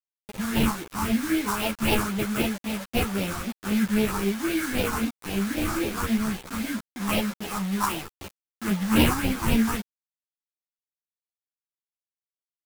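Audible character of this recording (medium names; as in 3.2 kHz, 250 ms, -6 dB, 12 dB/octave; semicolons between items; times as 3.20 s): aliases and images of a low sample rate 1.9 kHz, jitter 20%; phasing stages 4, 3.8 Hz, lowest notch 500–1200 Hz; a quantiser's noise floor 6-bit, dither none; a shimmering, thickened sound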